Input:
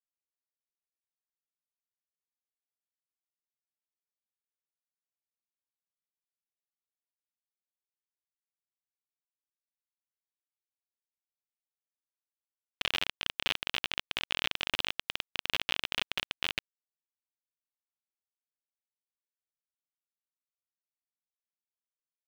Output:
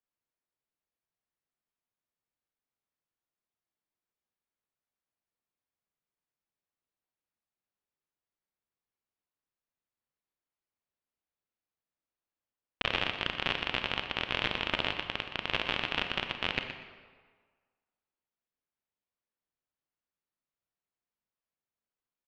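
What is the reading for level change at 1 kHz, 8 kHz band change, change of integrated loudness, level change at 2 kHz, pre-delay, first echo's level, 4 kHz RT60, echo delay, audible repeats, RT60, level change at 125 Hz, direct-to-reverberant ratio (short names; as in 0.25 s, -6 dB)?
+5.5 dB, -10.0 dB, +1.0 dB, +2.5 dB, 28 ms, -11.0 dB, 1.1 s, 0.121 s, 2, 1.6 s, +8.5 dB, 5.5 dB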